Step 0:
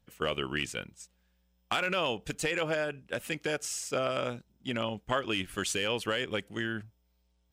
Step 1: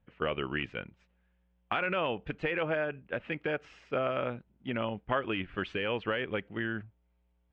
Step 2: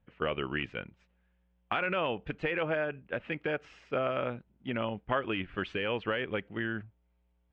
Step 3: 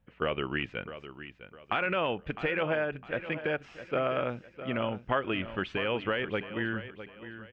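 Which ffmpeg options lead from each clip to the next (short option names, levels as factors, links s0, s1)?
-af "lowpass=f=2600:w=0.5412,lowpass=f=2600:w=1.3066"
-af anull
-af "aecho=1:1:657|1314|1971:0.237|0.0806|0.0274,volume=1.19"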